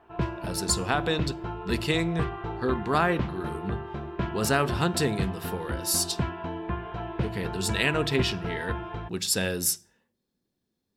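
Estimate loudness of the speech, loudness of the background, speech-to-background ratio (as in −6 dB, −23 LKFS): −28.5 LKFS, −34.0 LKFS, 5.5 dB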